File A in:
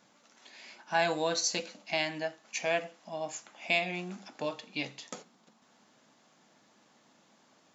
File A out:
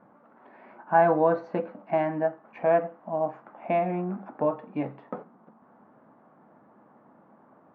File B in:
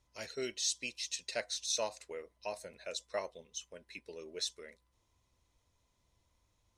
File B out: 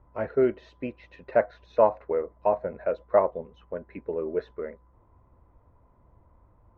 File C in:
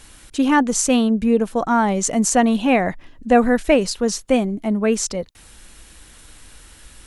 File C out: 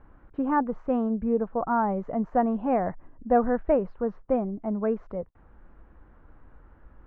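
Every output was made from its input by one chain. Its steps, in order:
low-pass 1.3 kHz 24 dB/octave; dynamic bell 270 Hz, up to -5 dB, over -32 dBFS, Q 1.1; normalise loudness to -27 LUFS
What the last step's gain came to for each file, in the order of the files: +9.5 dB, +17.5 dB, -5.0 dB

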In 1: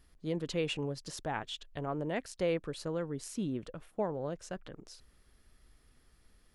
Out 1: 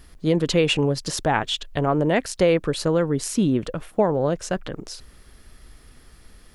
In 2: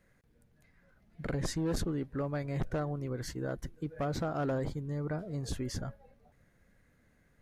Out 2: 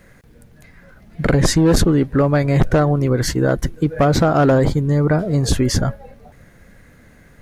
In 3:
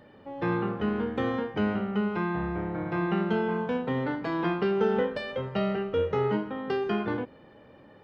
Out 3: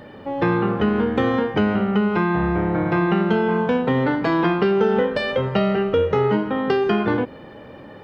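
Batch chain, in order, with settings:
compression 2.5:1, threshold -30 dBFS; peak normalisation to -6 dBFS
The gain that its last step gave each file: +15.5 dB, +20.0 dB, +13.0 dB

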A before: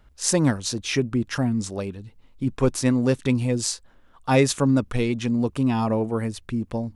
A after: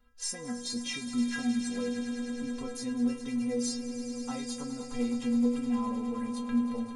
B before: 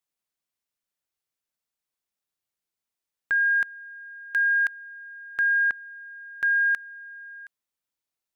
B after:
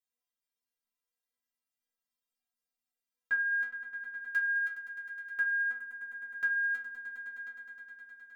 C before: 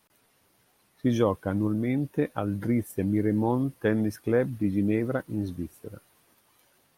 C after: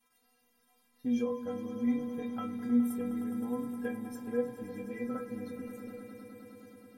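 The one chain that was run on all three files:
compression, threshold -26 dBFS; inharmonic resonator 240 Hz, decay 0.42 s, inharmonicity 0.008; echo with a slow build-up 104 ms, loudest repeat 5, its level -14 dB; trim +9 dB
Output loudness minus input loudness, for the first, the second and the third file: -9.0 LU, -9.5 LU, -7.5 LU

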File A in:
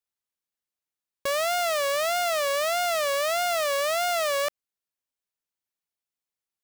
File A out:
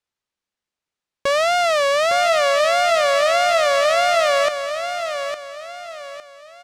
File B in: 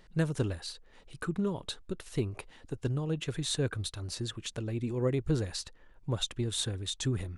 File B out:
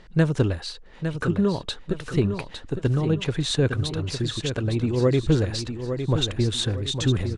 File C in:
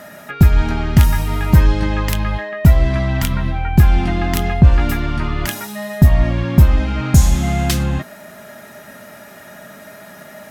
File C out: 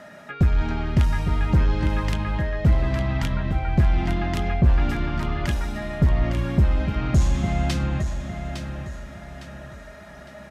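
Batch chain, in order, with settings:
saturation -5 dBFS; distance through air 73 m; feedback delay 858 ms, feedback 36%, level -8 dB; peak normalisation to -9 dBFS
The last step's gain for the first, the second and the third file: +8.5 dB, +9.5 dB, -6.0 dB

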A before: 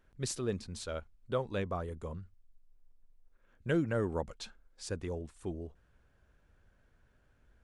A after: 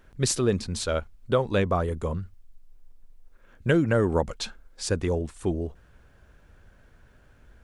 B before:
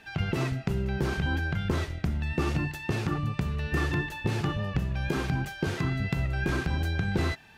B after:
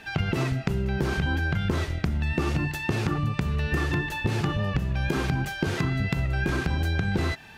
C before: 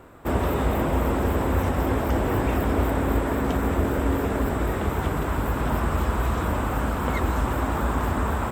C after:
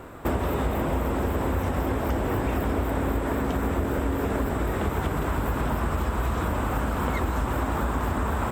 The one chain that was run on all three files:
compression 5:1, threshold -29 dBFS; normalise loudness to -27 LUFS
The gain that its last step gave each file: +12.0 dB, +7.0 dB, +6.0 dB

